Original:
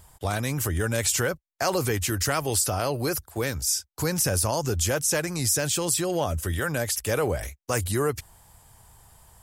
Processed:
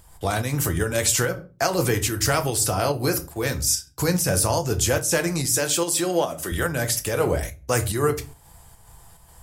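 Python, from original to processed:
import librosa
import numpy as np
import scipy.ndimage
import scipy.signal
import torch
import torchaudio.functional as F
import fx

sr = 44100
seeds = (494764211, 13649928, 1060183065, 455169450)

p1 = fx.highpass(x, sr, hz=240.0, slope=12, at=(5.46, 6.52))
p2 = fx.room_shoebox(p1, sr, seeds[0], volume_m3=170.0, walls='furnished', distance_m=0.73)
p3 = fx.volume_shaper(p2, sr, bpm=144, per_beat=1, depth_db=-14, release_ms=116.0, shape='slow start')
p4 = p2 + (p3 * librosa.db_to_amplitude(0.0))
y = p4 * librosa.db_to_amplitude(-3.0)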